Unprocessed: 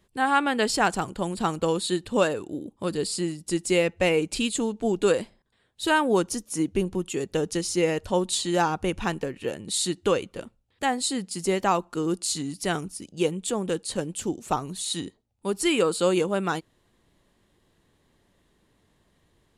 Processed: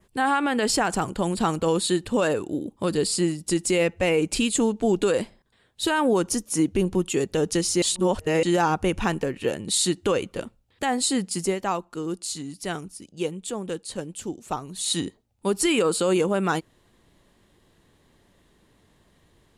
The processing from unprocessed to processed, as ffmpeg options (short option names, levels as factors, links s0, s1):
-filter_complex "[0:a]asplit=5[s0][s1][s2][s3][s4];[s0]atrim=end=7.822[s5];[s1]atrim=start=7.818:end=8.432,asetpts=PTS-STARTPTS,areverse[s6];[s2]atrim=start=8.428:end=11.55,asetpts=PTS-STARTPTS,afade=t=out:st=2.952:d=0.17:silence=0.375837[s7];[s3]atrim=start=11.55:end=14.72,asetpts=PTS-STARTPTS,volume=0.376[s8];[s4]atrim=start=14.72,asetpts=PTS-STARTPTS,afade=t=in:d=0.17:silence=0.375837[s9];[s5][s6]acrossfade=d=0.004:c1=hsin:c2=hsin[s10];[s7][s8][s9]concat=n=3:v=0:a=1[s11];[s10][s11]acrossfade=d=0.004:c1=hsin:c2=hsin,adynamicequalizer=threshold=0.00447:dfrequency=3900:dqfactor=2.1:tfrequency=3900:tqfactor=2.1:attack=5:release=100:ratio=0.375:range=2.5:mode=cutabove:tftype=bell,alimiter=limit=0.141:level=0:latency=1:release=55,volume=1.78"